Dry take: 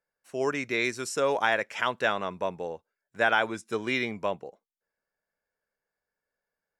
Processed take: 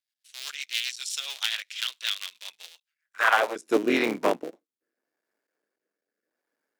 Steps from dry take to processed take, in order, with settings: cycle switcher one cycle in 3, muted; high-pass sweep 3.5 kHz -> 290 Hz, 2.80–3.74 s; rotary cabinet horn 7.5 Hz, later 0.8 Hz, at 3.15 s; trim +6 dB

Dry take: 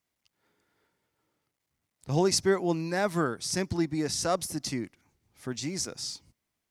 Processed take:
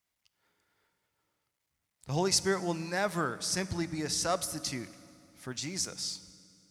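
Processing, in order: peaking EQ 270 Hz -7 dB 2.4 oct; reverberation RT60 2.5 s, pre-delay 3 ms, DRR 14.5 dB

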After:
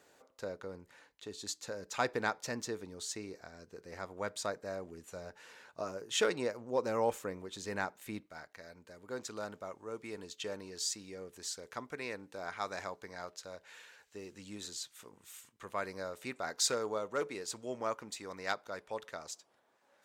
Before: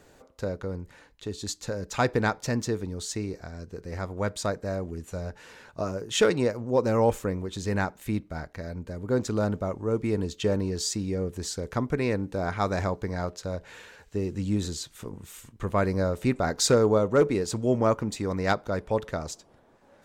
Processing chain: high-pass 550 Hz 6 dB/octave, from 8.26 s 1.3 kHz; trim -5.5 dB

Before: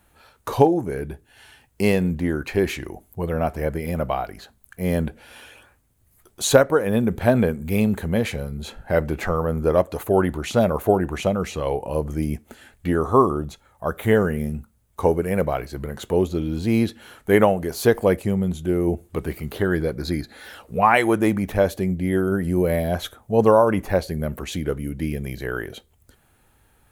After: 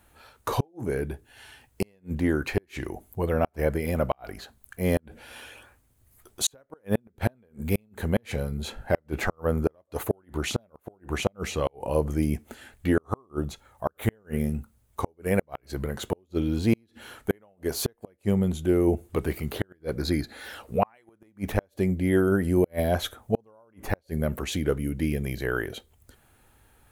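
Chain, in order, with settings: peaking EQ 170 Hz -6 dB 0.21 oct; inverted gate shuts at -11 dBFS, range -41 dB

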